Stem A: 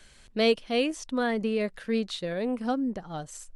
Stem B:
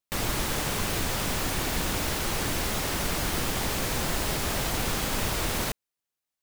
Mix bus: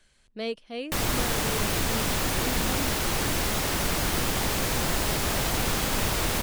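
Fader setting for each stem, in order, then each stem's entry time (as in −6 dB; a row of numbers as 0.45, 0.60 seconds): −9.0, +2.0 decibels; 0.00, 0.80 seconds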